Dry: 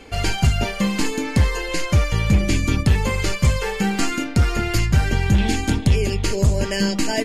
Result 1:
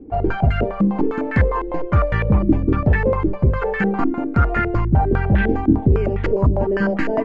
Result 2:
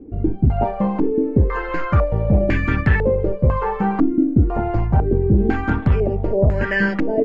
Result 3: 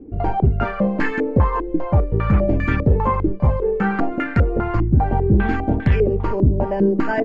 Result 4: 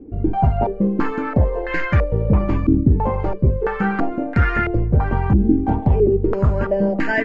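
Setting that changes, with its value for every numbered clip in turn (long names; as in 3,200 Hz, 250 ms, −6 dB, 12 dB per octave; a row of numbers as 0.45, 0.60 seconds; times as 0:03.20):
low-pass on a step sequencer, speed: 9.9, 2, 5, 3 Hertz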